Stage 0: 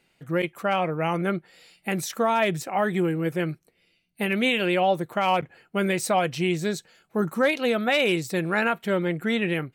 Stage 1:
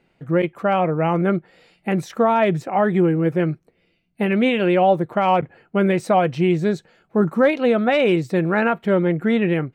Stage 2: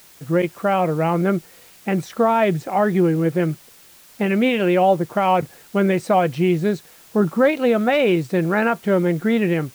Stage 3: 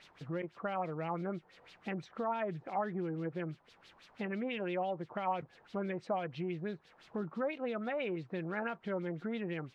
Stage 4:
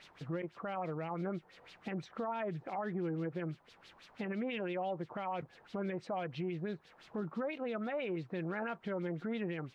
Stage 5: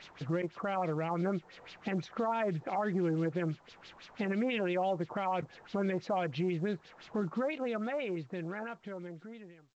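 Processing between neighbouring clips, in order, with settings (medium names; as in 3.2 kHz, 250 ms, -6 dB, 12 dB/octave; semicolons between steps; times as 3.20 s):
low-pass 1 kHz 6 dB/octave; trim +7.5 dB
word length cut 8-bit, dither triangular
compression 2:1, threshold -36 dBFS, peak gain reduction 13 dB; LFO low-pass sine 6 Hz 850–4200 Hz; trim -9 dB
peak limiter -31.5 dBFS, peak gain reduction 7.5 dB; trim +1.5 dB
fade out at the end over 2.65 s; trim +5.5 dB; µ-law 128 kbps 16 kHz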